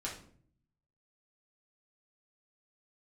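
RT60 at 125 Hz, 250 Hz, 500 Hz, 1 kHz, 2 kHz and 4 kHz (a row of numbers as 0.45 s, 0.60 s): 1.1 s, 0.85 s, 0.60 s, 0.45 s, 0.40 s, 0.35 s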